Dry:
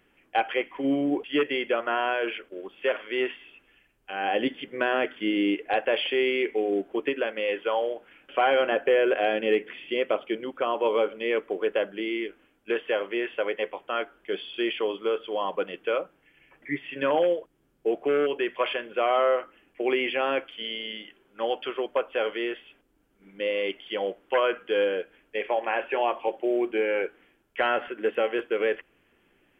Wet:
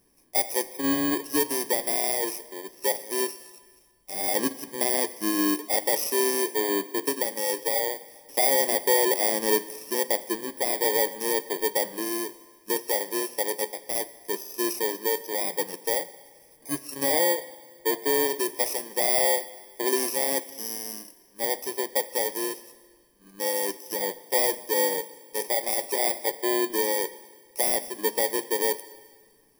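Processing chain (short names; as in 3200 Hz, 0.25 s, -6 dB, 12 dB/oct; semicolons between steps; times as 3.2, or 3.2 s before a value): FFT order left unsorted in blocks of 32 samples; Schroeder reverb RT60 1.7 s, combs from 33 ms, DRR 16 dB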